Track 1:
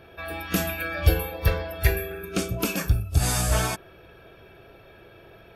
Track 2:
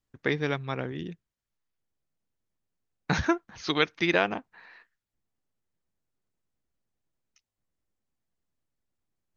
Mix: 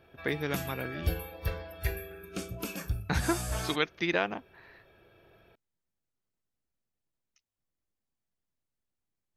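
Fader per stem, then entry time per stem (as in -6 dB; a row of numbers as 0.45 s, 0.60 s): -11.0 dB, -4.5 dB; 0.00 s, 0.00 s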